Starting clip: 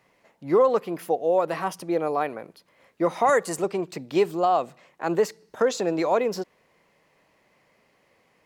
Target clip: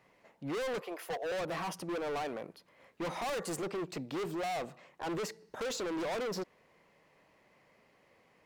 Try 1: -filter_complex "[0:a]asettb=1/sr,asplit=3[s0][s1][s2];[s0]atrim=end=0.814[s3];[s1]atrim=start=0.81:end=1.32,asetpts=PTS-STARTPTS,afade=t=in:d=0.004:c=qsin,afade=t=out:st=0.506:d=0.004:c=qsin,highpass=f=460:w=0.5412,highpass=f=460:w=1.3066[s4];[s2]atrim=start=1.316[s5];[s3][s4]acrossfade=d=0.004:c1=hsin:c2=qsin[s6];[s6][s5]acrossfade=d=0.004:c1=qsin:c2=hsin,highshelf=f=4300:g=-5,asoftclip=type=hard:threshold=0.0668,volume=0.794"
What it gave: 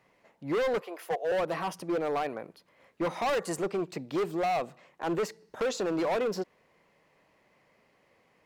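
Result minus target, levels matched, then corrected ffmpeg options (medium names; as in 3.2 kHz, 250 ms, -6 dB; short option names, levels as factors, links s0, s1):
hard clipper: distortion -4 dB
-filter_complex "[0:a]asettb=1/sr,asplit=3[s0][s1][s2];[s0]atrim=end=0.814[s3];[s1]atrim=start=0.81:end=1.32,asetpts=PTS-STARTPTS,afade=t=in:d=0.004:c=qsin,afade=t=out:st=0.506:d=0.004:c=qsin,highpass=f=460:w=0.5412,highpass=f=460:w=1.3066[s4];[s2]atrim=start=1.316[s5];[s3][s4]acrossfade=d=0.004:c1=hsin:c2=qsin[s6];[s6][s5]acrossfade=d=0.004:c1=qsin:c2=hsin,highshelf=f=4300:g=-5,asoftclip=type=hard:threshold=0.0251,volume=0.794"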